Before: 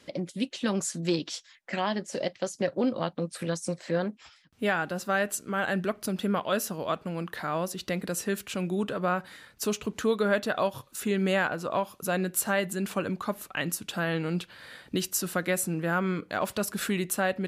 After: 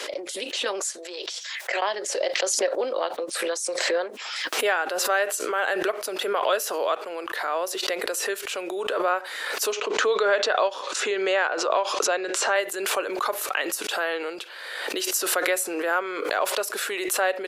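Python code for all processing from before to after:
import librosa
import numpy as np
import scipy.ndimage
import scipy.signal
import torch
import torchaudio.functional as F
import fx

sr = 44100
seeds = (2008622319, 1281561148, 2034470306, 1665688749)

y = fx.chain(x, sr, fx.cheby1_highpass(hz=370.0, order=5),
    fx.over_compress(threshold_db=-41.0, ratio=-1.0), at=(0.98, 1.82))
y = fx.chain(y, sr, fx.lowpass(hz=6800.0, slope=24),
    fx.band_squash(depth_pct=40), at=(9.72, 12.56))
y = scipy.signal.sosfilt(scipy.signal.butter(6, 390.0, 'highpass', fs=sr, output='sos'), y)
y = fx.high_shelf(y, sr, hz=11000.0, db=-3.5)
y = fx.pre_swell(y, sr, db_per_s=33.0)
y = F.gain(torch.from_numpy(y), 4.0).numpy()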